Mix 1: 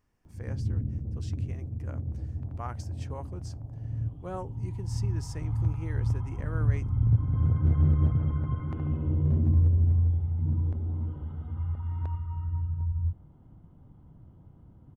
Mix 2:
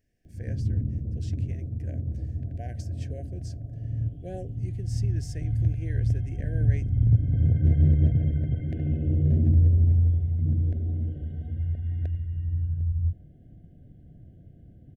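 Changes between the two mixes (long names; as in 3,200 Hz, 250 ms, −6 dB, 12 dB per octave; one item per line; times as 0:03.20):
background +3.0 dB
master: add linear-phase brick-wall band-stop 750–1,500 Hz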